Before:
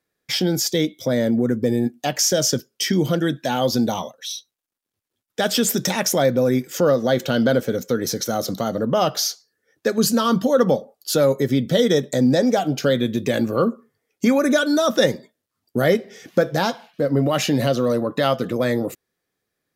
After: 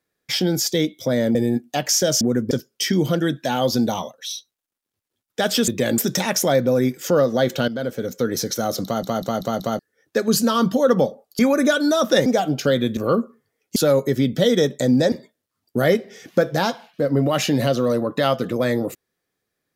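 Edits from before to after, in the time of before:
1.35–1.65 move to 2.51
7.38–7.97 fade in, from -13.5 dB
8.54 stutter in place 0.19 s, 5 plays
11.09–12.45 swap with 14.25–15.12
13.16–13.46 move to 5.68

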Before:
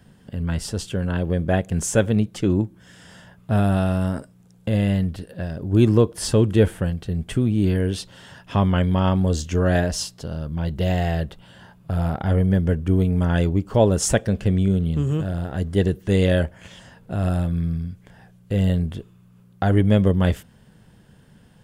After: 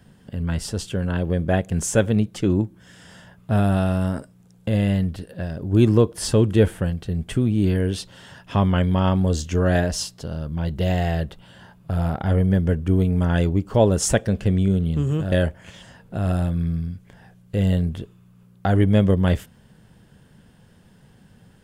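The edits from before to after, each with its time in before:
15.32–16.29 cut

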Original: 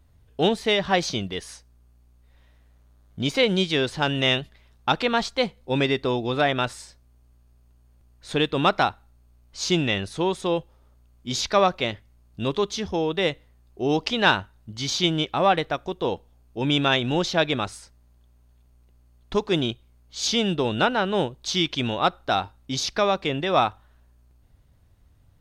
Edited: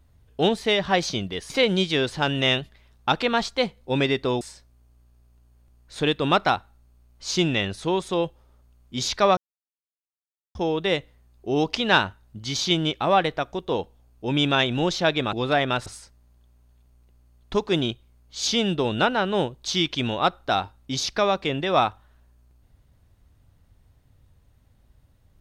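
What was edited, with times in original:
1.5–3.3 cut
6.21–6.74 move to 17.66
11.7–12.88 mute

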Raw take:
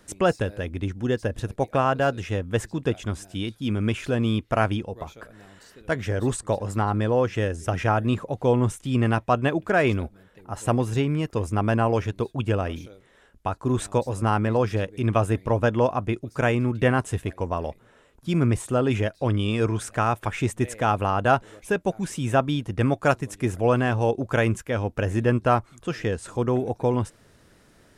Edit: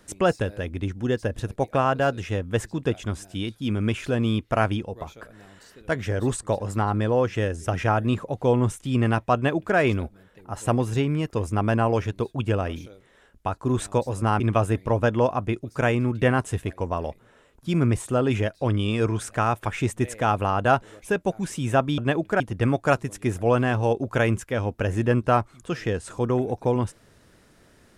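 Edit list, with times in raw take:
9.35–9.77 copy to 22.58
14.4–15 cut

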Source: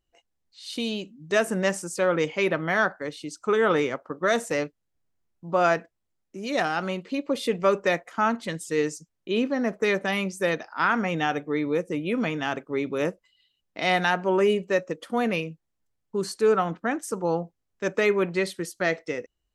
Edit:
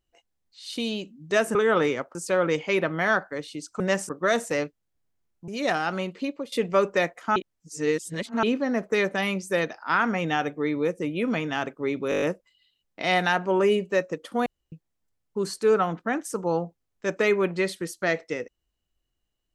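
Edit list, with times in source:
1.55–1.84 swap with 3.49–4.09
5.48–6.38 cut
7.13–7.42 fade out, to -19.5 dB
8.26–9.33 reverse
13 stutter 0.02 s, 7 plays
15.24–15.5 room tone

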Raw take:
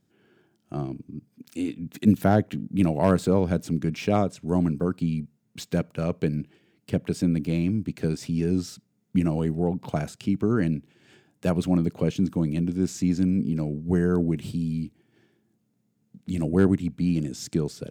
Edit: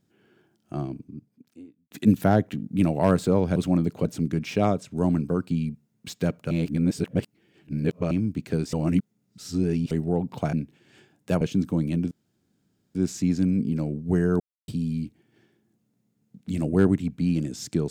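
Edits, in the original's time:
0.8–1.91 studio fade out
6.02–7.62 reverse
8.24–9.42 reverse
10.04–10.68 cut
11.56–12.05 move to 3.56
12.75 insert room tone 0.84 s
14.2–14.48 mute

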